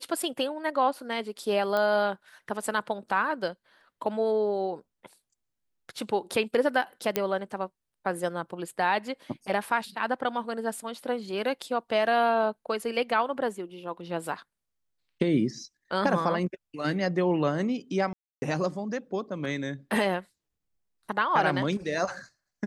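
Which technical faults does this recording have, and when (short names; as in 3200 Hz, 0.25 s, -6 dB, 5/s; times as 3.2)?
1.77 pop -16 dBFS
7.16 pop -9 dBFS
18.13–18.42 gap 0.29 s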